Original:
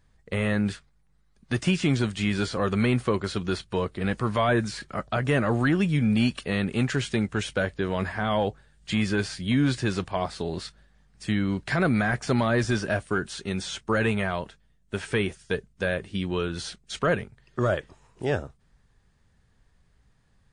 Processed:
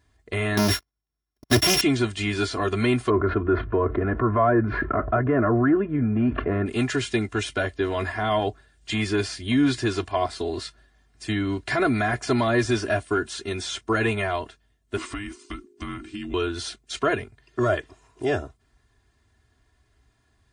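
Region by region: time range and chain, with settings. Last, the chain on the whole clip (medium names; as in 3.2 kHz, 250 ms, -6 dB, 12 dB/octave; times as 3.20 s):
0.57–1.81 s: sorted samples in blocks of 8 samples + waveshaping leveller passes 5 + upward expansion, over -31 dBFS
3.10–6.66 s: low-pass 1.5 kHz 24 dB/octave + peaking EQ 840 Hz -11 dB 0.23 oct + level flattener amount 70%
14.97–16.34 s: compression, threshold -29 dBFS + frequency shift -410 Hz
whole clip: high-pass 60 Hz; comb 2.9 ms, depth 92%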